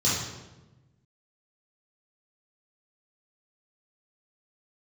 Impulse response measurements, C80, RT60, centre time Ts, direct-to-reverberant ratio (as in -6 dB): 4.0 dB, 1.1 s, 68 ms, -8.5 dB